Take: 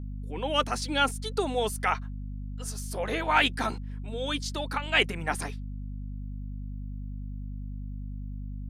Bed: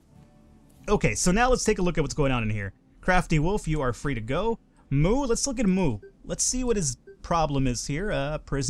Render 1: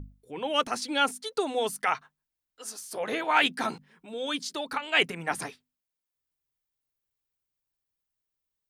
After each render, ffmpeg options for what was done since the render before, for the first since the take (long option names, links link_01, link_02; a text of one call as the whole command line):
ffmpeg -i in.wav -af "bandreject=frequency=50:width_type=h:width=6,bandreject=frequency=100:width_type=h:width=6,bandreject=frequency=150:width_type=h:width=6,bandreject=frequency=200:width_type=h:width=6,bandreject=frequency=250:width_type=h:width=6" out.wav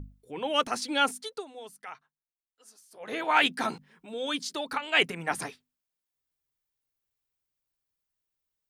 ffmpeg -i in.wav -filter_complex "[0:a]asplit=3[link_01][link_02][link_03];[link_01]atrim=end=1.45,asetpts=PTS-STARTPTS,afade=type=out:start_time=1.2:duration=0.25:silence=0.158489[link_04];[link_02]atrim=start=1.45:end=2.99,asetpts=PTS-STARTPTS,volume=-16dB[link_05];[link_03]atrim=start=2.99,asetpts=PTS-STARTPTS,afade=type=in:duration=0.25:silence=0.158489[link_06];[link_04][link_05][link_06]concat=n=3:v=0:a=1" out.wav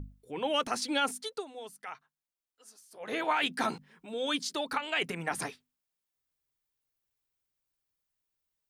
ffmpeg -i in.wav -af "alimiter=limit=-18.5dB:level=0:latency=1:release=66" out.wav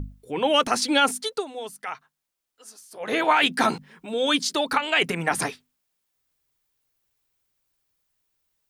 ffmpeg -i in.wav -af "volume=9.5dB" out.wav